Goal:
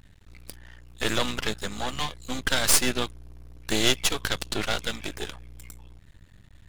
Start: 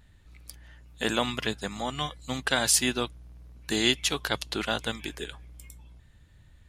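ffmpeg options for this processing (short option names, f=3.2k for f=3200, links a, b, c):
-af "aeval=exprs='max(val(0),0)':c=same,volume=7dB"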